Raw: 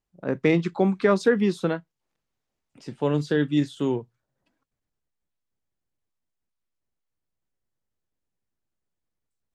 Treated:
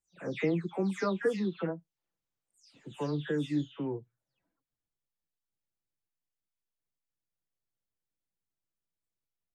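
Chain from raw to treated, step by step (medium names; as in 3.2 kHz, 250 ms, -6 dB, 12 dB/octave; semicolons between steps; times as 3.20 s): delay that grows with frequency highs early, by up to 274 ms; trim -8.5 dB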